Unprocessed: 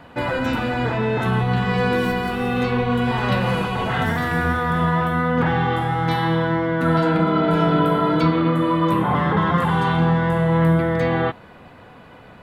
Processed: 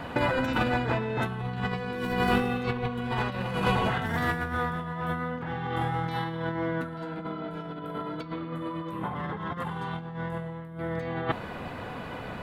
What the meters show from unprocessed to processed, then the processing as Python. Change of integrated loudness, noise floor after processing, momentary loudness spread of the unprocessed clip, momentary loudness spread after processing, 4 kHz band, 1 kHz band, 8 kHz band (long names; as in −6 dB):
−11.0 dB, −39 dBFS, 5 LU, 10 LU, −8.0 dB, −10.0 dB, can't be measured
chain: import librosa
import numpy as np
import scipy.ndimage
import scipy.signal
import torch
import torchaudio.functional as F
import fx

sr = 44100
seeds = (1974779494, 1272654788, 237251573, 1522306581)

y = fx.over_compress(x, sr, threshold_db=-26.0, ratio=-0.5)
y = F.gain(torch.from_numpy(y), -2.0).numpy()